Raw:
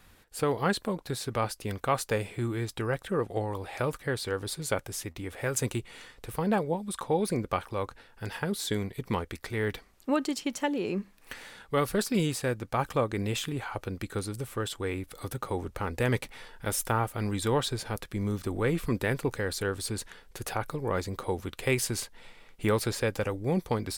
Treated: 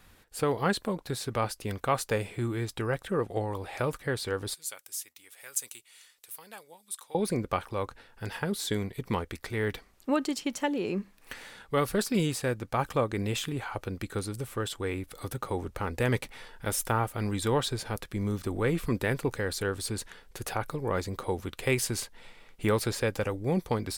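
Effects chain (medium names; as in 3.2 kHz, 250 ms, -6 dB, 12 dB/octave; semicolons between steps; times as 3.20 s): 4.54–7.15 s: differentiator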